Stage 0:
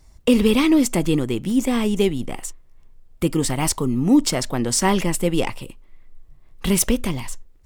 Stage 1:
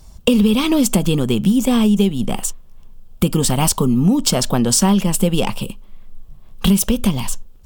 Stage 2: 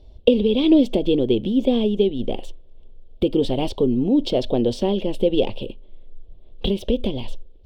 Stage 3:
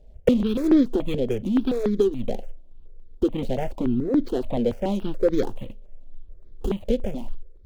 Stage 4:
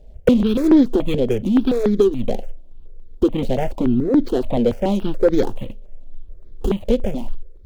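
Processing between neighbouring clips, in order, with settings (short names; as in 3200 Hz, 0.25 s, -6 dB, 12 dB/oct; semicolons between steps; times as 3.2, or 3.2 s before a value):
thirty-one-band EQ 200 Hz +10 dB, 315 Hz -8 dB, 2000 Hz -11 dB, 3150 Hz +4 dB, 16000 Hz +10 dB; compressor 6:1, threshold -20 dBFS, peak gain reduction 12 dB; gain +8.5 dB
EQ curve 100 Hz 0 dB, 170 Hz -12 dB, 320 Hz +7 dB, 570 Hz +6 dB, 1300 Hz -20 dB, 3500 Hz +1 dB, 7200 Hz -28 dB; gain -3.5 dB
median filter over 25 samples; step phaser 7 Hz 320–2800 Hz
soft clip -8.5 dBFS, distortion -24 dB; gain +6 dB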